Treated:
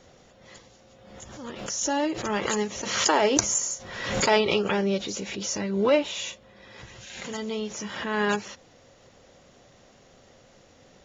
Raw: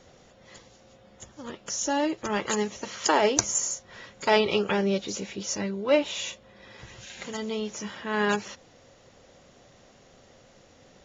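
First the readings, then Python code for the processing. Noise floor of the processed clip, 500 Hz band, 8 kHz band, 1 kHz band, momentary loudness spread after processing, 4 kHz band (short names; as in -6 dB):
-56 dBFS, +1.0 dB, +1.5 dB, +0.5 dB, 18 LU, +2.5 dB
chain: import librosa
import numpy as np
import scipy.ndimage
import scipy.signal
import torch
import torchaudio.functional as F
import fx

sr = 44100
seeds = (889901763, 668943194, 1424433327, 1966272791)

y = fx.pre_swell(x, sr, db_per_s=50.0)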